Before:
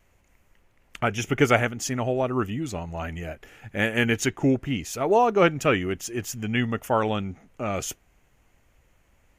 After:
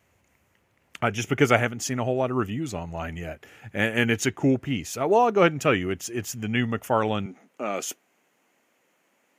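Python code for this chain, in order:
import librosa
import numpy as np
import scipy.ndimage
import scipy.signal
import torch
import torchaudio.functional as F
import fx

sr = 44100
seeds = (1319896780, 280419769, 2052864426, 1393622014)

y = fx.highpass(x, sr, hz=fx.steps((0.0, 76.0), (7.26, 220.0)), slope=24)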